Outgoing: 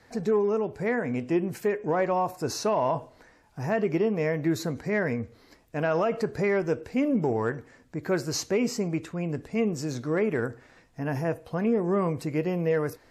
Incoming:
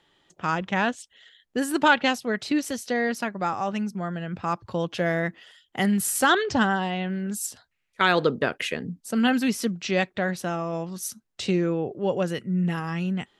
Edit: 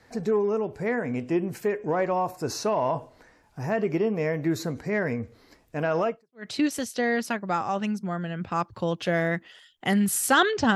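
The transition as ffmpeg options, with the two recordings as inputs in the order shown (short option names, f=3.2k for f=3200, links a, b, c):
-filter_complex "[0:a]apad=whole_dur=10.75,atrim=end=10.75,atrim=end=6.47,asetpts=PTS-STARTPTS[a];[1:a]atrim=start=2.01:end=6.67,asetpts=PTS-STARTPTS[b];[a][b]acrossfade=d=0.38:c1=exp:c2=exp"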